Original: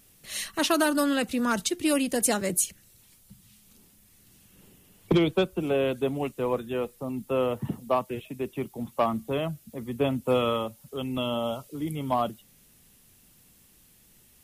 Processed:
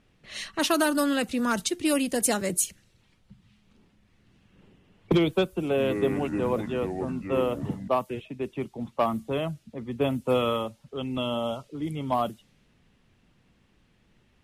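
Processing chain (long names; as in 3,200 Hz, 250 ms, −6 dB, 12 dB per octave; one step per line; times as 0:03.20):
low-pass that shuts in the quiet parts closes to 2,500 Hz, open at −22 dBFS
0:05.61–0:07.88: delay with pitch and tempo change per echo 166 ms, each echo −5 semitones, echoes 3, each echo −6 dB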